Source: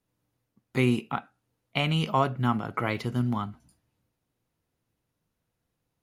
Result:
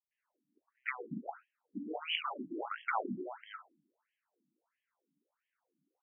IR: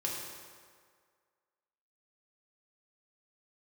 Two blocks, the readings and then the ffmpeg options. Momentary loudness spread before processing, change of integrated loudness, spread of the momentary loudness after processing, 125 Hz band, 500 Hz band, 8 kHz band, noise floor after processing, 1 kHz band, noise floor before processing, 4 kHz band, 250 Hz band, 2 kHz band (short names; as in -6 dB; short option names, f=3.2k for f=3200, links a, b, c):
9 LU, -12.0 dB, 14 LU, -28.0 dB, -12.5 dB, under -25 dB, under -85 dBFS, -9.5 dB, -81 dBFS, -6.5 dB, -15.0 dB, -6.5 dB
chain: -filter_complex "[0:a]afftfilt=real='re*lt(hypot(re,im),0.158)':imag='im*lt(hypot(re,im),0.158)':win_size=1024:overlap=0.75,acrossover=split=550|3000[a][b][c];[b]adelay=110[d];[c]adelay=180[e];[a][d][e]amix=inputs=3:normalize=0,afftfilt=real='re*between(b*sr/1024,230*pow(2400/230,0.5+0.5*sin(2*PI*1.5*pts/sr))/1.41,230*pow(2400/230,0.5+0.5*sin(2*PI*1.5*pts/sr))*1.41)':imag='im*between(b*sr/1024,230*pow(2400/230,0.5+0.5*sin(2*PI*1.5*pts/sr))/1.41,230*pow(2400/230,0.5+0.5*sin(2*PI*1.5*pts/sr))*1.41)':win_size=1024:overlap=0.75,volume=5.5dB"